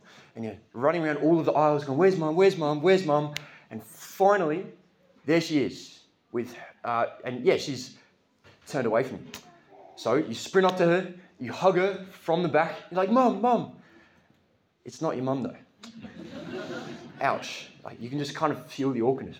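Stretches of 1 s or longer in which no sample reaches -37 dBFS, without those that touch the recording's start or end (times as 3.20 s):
13.70–14.86 s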